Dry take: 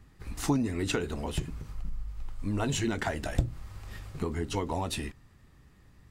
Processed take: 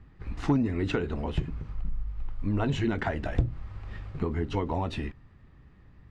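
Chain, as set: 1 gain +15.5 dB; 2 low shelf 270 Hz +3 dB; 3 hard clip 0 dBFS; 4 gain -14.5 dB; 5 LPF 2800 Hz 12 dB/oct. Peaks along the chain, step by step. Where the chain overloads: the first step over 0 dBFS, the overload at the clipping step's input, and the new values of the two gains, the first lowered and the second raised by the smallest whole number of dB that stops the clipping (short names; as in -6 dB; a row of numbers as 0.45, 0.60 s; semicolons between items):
+4.5, +6.5, 0.0, -14.5, -14.5 dBFS; step 1, 6.5 dB; step 1 +8.5 dB, step 4 -7.5 dB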